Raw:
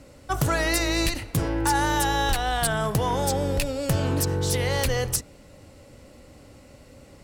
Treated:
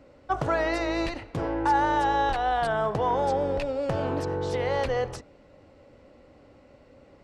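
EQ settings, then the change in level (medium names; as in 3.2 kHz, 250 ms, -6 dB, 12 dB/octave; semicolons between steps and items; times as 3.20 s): dynamic bell 760 Hz, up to +5 dB, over -39 dBFS, Q 0.88; tone controls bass -9 dB, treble +2 dB; tape spacing loss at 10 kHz 30 dB; 0.0 dB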